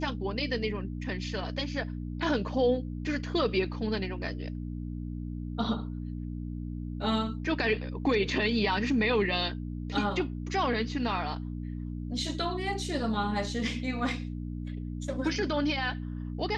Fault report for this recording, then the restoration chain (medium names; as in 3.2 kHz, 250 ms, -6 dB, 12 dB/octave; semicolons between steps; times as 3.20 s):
hum 60 Hz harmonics 5 -36 dBFS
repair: de-hum 60 Hz, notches 5